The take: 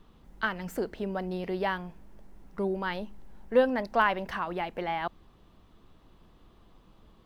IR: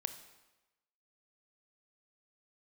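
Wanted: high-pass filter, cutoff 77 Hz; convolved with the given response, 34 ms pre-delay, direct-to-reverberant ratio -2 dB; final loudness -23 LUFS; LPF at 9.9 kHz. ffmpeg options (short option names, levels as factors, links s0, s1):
-filter_complex "[0:a]highpass=77,lowpass=9900,asplit=2[s0][s1];[1:a]atrim=start_sample=2205,adelay=34[s2];[s1][s2]afir=irnorm=-1:irlink=0,volume=1.33[s3];[s0][s3]amix=inputs=2:normalize=0,volume=1.58"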